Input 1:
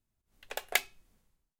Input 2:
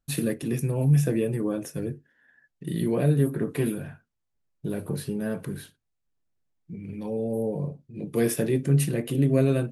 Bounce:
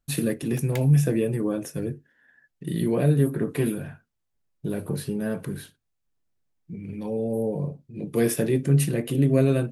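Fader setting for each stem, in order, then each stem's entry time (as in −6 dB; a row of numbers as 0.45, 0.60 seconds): −10.5, +1.5 decibels; 0.00, 0.00 seconds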